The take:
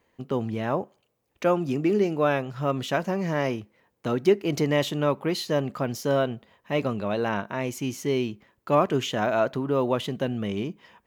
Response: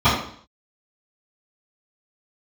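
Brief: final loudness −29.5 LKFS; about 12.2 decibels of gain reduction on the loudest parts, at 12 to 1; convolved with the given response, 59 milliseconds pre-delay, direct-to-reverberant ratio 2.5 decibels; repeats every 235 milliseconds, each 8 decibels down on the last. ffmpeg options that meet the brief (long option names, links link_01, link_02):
-filter_complex "[0:a]acompressor=threshold=-26dB:ratio=12,aecho=1:1:235|470|705|940|1175:0.398|0.159|0.0637|0.0255|0.0102,asplit=2[link_01][link_02];[1:a]atrim=start_sample=2205,adelay=59[link_03];[link_02][link_03]afir=irnorm=-1:irlink=0,volume=-26dB[link_04];[link_01][link_04]amix=inputs=2:normalize=0,volume=-1dB"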